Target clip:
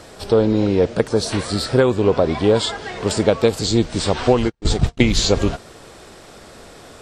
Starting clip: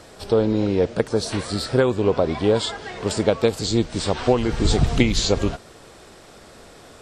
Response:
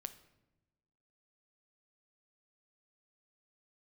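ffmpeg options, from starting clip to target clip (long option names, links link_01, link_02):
-filter_complex "[0:a]asplit=3[link_01][link_02][link_03];[link_01]afade=type=out:start_time=4.48:duration=0.02[link_04];[link_02]agate=range=-54dB:threshold=-16dB:ratio=16:detection=peak,afade=type=in:start_time=4.48:duration=0.02,afade=type=out:start_time=5.01:duration=0.02[link_05];[link_03]afade=type=in:start_time=5.01:duration=0.02[link_06];[link_04][link_05][link_06]amix=inputs=3:normalize=0,asplit=2[link_07][link_08];[link_08]asoftclip=type=tanh:threshold=-14.5dB,volume=-10dB[link_09];[link_07][link_09]amix=inputs=2:normalize=0,volume=1.5dB"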